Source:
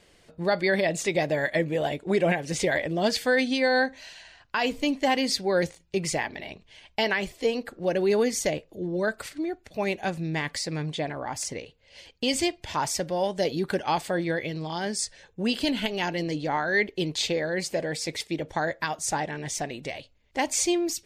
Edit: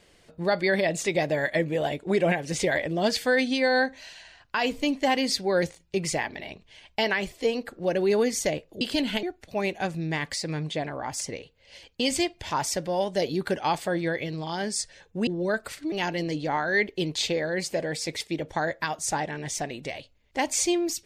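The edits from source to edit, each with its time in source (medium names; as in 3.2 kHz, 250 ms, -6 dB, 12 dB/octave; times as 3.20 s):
8.81–9.46 s: swap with 15.50–15.92 s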